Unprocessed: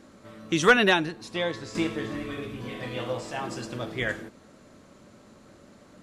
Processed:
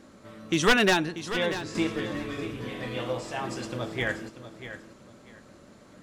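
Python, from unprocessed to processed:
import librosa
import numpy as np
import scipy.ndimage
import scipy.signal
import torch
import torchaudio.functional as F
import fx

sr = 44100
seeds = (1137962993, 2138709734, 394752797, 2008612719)

y = np.minimum(x, 2.0 * 10.0 ** (-16.0 / 20.0) - x)
y = fx.echo_feedback(y, sr, ms=639, feedback_pct=22, wet_db=-12)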